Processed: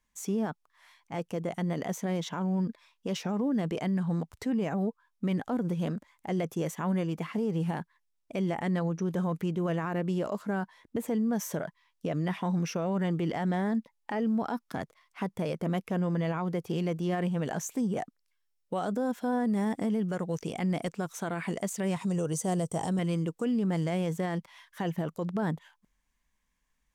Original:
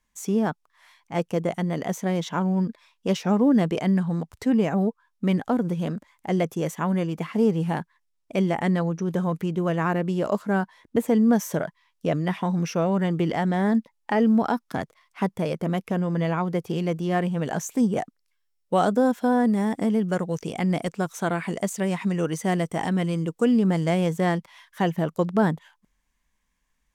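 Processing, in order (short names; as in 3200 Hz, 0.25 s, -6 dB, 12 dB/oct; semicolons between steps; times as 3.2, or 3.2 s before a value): 21.96–22.99 graphic EQ 125/250/500/2000/8000 Hz +7/-5/+4/-10/+9 dB; limiter -19.5 dBFS, peak gain reduction 9.5 dB; gain -3.5 dB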